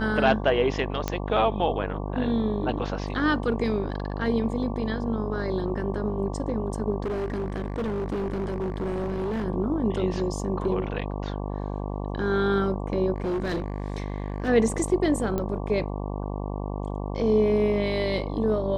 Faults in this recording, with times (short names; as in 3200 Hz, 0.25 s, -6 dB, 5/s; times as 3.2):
buzz 50 Hz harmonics 23 -31 dBFS
1.08 pop -11 dBFS
7.04–9.45 clipped -25 dBFS
13.16–14.49 clipped -24 dBFS
15.38 pop -16 dBFS